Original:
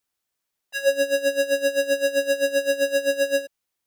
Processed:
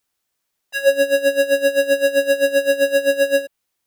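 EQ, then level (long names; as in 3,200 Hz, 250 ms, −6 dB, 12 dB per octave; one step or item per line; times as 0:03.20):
dynamic equaliser 6,000 Hz, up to −7 dB, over −48 dBFS, Q 1.6
+5.5 dB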